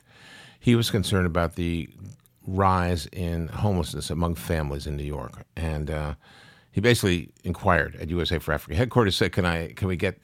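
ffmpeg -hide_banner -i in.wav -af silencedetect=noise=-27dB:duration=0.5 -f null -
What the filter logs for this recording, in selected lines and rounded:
silence_start: 0.00
silence_end: 0.67 | silence_duration: 0.67
silence_start: 1.83
silence_end: 2.48 | silence_duration: 0.64
silence_start: 6.11
silence_end: 6.77 | silence_duration: 0.66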